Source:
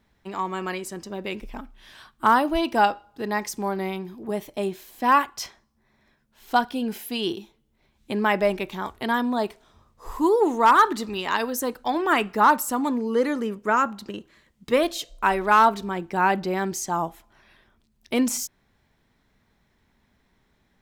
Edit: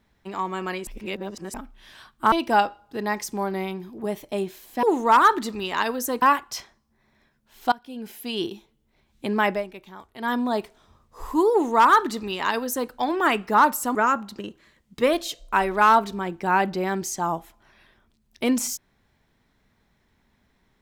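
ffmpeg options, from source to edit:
-filter_complex "[0:a]asplit=10[a][b][c][d][e][f][g][h][i][j];[a]atrim=end=0.872[k];[b]atrim=start=0.868:end=1.542,asetpts=PTS-STARTPTS,areverse[l];[c]atrim=start=1.538:end=2.322[m];[d]atrim=start=2.568:end=5.082[n];[e]atrim=start=10.368:end=11.762[o];[f]atrim=start=5.078:end=6.58,asetpts=PTS-STARTPTS,afade=t=out:st=1.498:d=0.004:c=hsin:silence=0.0707946[p];[g]atrim=start=6.58:end=8.5,asetpts=PTS-STARTPTS,afade=t=in:d=0.76:silence=0.0707946,afade=t=out:st=1.77:d=0.15:silence=0.251189[q];[h]atrim=start=8.5:end=9.04,asetpts=PTS-STARTPTS,volume=-12dB[r];[i]atrim=start=9.04:end=12.812,asetpts=PTS-STARTPTS,afade=t=in:d=0.15:silence=0.251189[s];[j]atrim=start=13.648[t];[k][l]acrossfade=d=0.004:c1=hsin:c2=hsin[u];[u][m]acrossfade=d=0.004:c1=hsin:c2=hsin[v];[v][n]acrossfade=d=0.004:c1=hsin:c2=hsin[w];[w][o]acrossfade=d=0.004:c1=hsin:c2=hsin[x];[p][q][r][s]concat=n=4:v=0:a=1[y];[x][y]acrossfade=d=0.004:c1=hsin:c2=hsin[z];[z][t]acrossfade=d=0.004:c1=hsin:c2=hsin"

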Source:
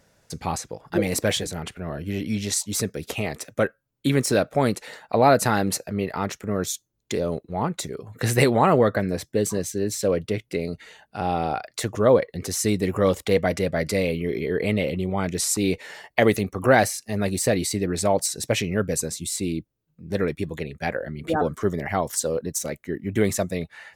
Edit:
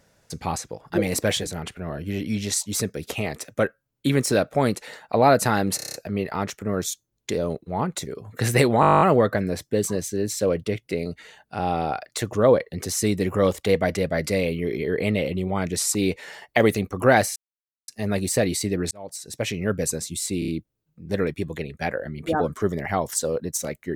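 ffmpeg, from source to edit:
-filter_complex "[0:a]asplit=22[a][b][c][d][e][f][g][h][i][j][k][l][m][n][o][p][q][r][s][t][u][v];[a]atrim=end=5.792[w];[b]atrim=start=5.758:end=5.792[x];[c]atrim=start=5.758:end=5.792[y];[d]atrim=start=5.758:end=5.792[z];[e]atrim=start=5.758:end=5.792[aa];[f]atrim=start=5.758:end=5.792[ab];[g]atrim=start=5.758:end=8.652[ac];[h]atrim=start=8.628:end=8.652[ad];[i]atrim=start=8.628:end=8.652[ae];[j]atrim=start=8.628:end=8.652[af];[k]atrim=start=8.628:end=8.652[ag];[l]atrim=start=8.628:end=8.652[ah];[m]atrim=start=8.628:end=8.652[ai];[n]atrim=start=8.628:end=8.652[aj];[o]atrim=start=8.628:end=8.652[ak];[p]atrim=start=8.628:end=8.652[al];[q]atrim=start=8.628:end=16.98,asetpts=PTS-STARTPTS,afade=t=out:st=8.348:d=0.004:c=hsin,apad=pad_dur=0.52[am];[r]atrim=start=16.98:end=18.01,asetpts=PTS-STARTPTS,afade=t=in:d=0.004:c=hsin,afade=t=out:st=1.026:d=0.004:c=hsin[an];[s]atrim=start=18.01:end=19.522,asetpts=PTS-STARTPTS,afade=t=in:d=0.84[ao];[t]atrim=start=19.488:end=19.522[ap];[u]atrim=start=19.488:end=19.522[aq];[v]atrim=start=19.488[ar];[w][x]acrossfade=d=0.004:c1=hsin:c2=hsin[as];[as][y]acrossfade=d=0.004:c1=hsin:c2=hsin[at];[at][z]acrossfade=d=0.004:c1=hsin:c2=hsin[au];[au][aa]acrossfade=d=0.004:c1=hsin:c2=hsin[av];[av][ab]acrossfade=d=0.004:c1=hsin:c2=hsin[aw];[aw][ac]acrossfade=d=0.004:c1=hsin:c2=hsin[ax];[ax][ad]acrossfade=d=0.004:c1=hsin:c2=hsin[ay];[ay][ae]acrossfade=d=0.004:c1=hsin:c2=hsin[az];[az][af]acrossfade=d=0.004:c1=hsin:c2=hsin[ba];[ba][ag]acrossfade=d=0.004:c1=hsin:c2=hsin[bb];[bb][ah]acrossfade=d=0.004:c1=hsin:c2=hsin[bc];[bc][ai]acrossfade=d=0.004:c1=hsin:c2=hsin[bd];[bd][aj]acrossfade=d=0.004:c1=hsin:c2=hsin[be];[be][ak]acrossfade=d=0.004:c1=hsin:c2=hsin[bf];[bf][al]acrossfade=d=0.004:c1=hsin:c2=hsin[bg];[am][an][ao]concat=n=3:v=0:a=1[bh];[bg][bh]acrossfade=d=0.004:c1=hsin:c2=hsin[bi];[bi][ap]acrossfade=d=0.004:c1=hsin:c2=hsin[bj];[bj][aq]acrossfade=d=0.004:c1=hsin:c2=hsin[bk];[bk][ar]acrossfade=d=0.004:c1=hsin:c2=hsin"

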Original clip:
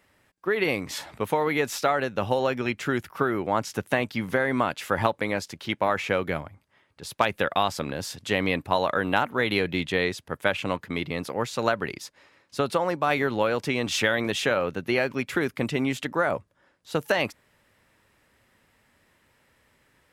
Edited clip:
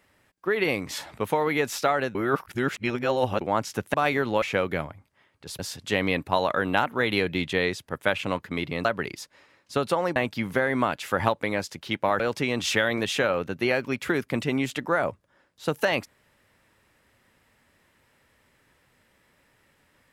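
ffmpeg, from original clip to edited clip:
-filter_complex "[0:a]asplit=9[a][b][c][d][e][f][g][h][i];[a]atrim=end=2.152[j];[b]atrim=start=2.148:end=3.412,asetpts=PTS-STARTPTS,areverse[k];[c]atrim=start=3.408:end=3.942[l];[d]atrim=start=12.988:end=13.472[m];[e]atrim=start=5.978:end=7.152[n];[f]atrim=start=7.978:end=11.242[o];[g]atrim=start=11.678:end=12.992[p];[h]atrim=start=3.938:end=5.982[q];[i]atrim=start=13.468[r];[j][k]acrossfade=d=0.004:c1=hsin:c2=hsin[s];[s][l]acrossfade=d=0.004:c1=hsin:c2=hsin[t];[t][m]acrossfade=d=0.004:c1=hsin:c2=hsin[u];[u][n]acrossfade=d=0.004:c1=hsin:c2=hsin[v];[v][o]acrossfade=d=0.004:c1=hsin:c2=hsin[w];[w][p]acrossfade=d=0.004:c1=hsin:c2=hsin[x];[x][q]acrossfade=d=0.004:c1=hsin:c2=hsin[y];[y][r]acrossfade=d=0.004:c1=hsin:c2=hsin"

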